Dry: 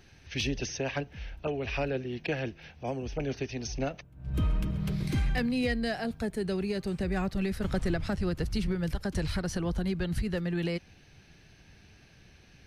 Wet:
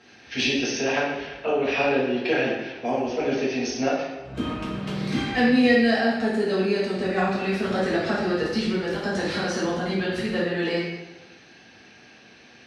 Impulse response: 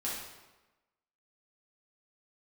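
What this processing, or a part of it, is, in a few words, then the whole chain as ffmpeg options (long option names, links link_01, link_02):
supermarket ceiling speaker: -filter_complex "[0:a]highpass=260,lowpass=5600[link_01];[1:a]atrim=start_sample=2205[link_02];[link_01][link_02]afir=irnorm=-1:irlink=0,volume=7.5dB"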